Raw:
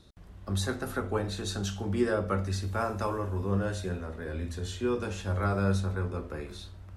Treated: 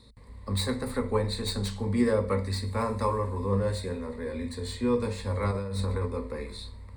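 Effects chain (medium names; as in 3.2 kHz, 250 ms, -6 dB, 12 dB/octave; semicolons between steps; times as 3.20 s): tracing distortion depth 0.05 ms; rippled EQ curve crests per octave 0.96, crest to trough 15 dB; 5.51–6.06 s: compressor with a negative ratio -30 dBFS, ratio -1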